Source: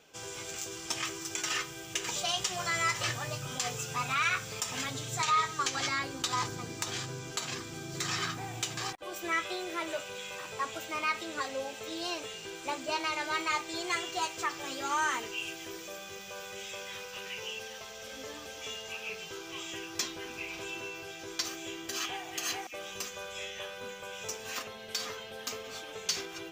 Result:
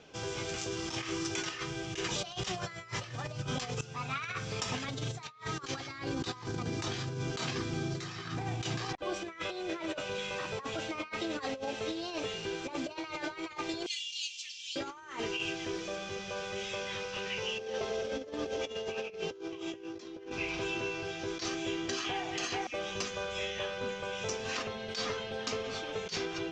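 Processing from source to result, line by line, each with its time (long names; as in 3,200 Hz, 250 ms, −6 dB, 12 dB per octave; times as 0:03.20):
0:00.75–0:01.27: double-tracking delay 34 ms −4.5 dB
0:03.81–0:04.81: fade in, from −16 dB
0:13.86–0:14.76: elliptic high-pass filter 2,800 Hz, stop band 60 dB
0:17.58–0:20.32: parametric band 410 Hz +12 dB 1.4 octaves
whole clip: low-pass filter 6,000 Hz 24 dB per octave; low-shelf EQ 490 Hz +7.5 dB; compressor whose output falls as the input rises −36 dBFS, ratio −0.5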